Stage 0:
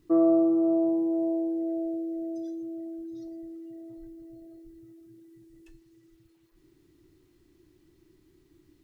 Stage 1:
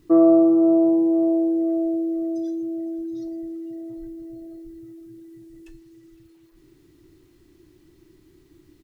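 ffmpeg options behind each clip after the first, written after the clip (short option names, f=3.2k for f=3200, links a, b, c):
-af "aecho=1:1:510|1020|1530|2040:0.0841|0.048|0.0273|0.0156,volume=7dB"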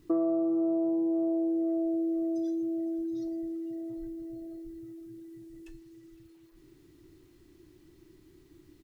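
-af "acompressor=threshold=-24dB:ratio=4,volume=-3dB"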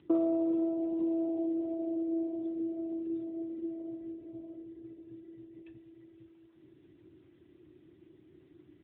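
-ar 8000 -c:a libopencore_amrnb -b:a 10200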